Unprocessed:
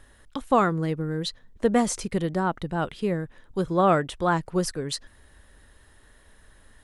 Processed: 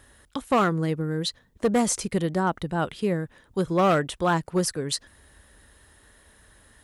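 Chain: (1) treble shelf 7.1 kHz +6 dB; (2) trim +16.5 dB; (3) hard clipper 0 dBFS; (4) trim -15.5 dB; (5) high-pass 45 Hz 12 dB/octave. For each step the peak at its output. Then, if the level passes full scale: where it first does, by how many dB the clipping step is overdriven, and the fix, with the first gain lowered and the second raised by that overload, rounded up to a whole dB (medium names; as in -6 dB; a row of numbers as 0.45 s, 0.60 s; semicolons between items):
-9.0 dBFS, +7.5 dBFS, 0.0 dBFS, -15.5 dBFS, -13.5 dBFS; step 2, 7.5 dB; step 2 +8.5 dB, step 4 -7.5 dB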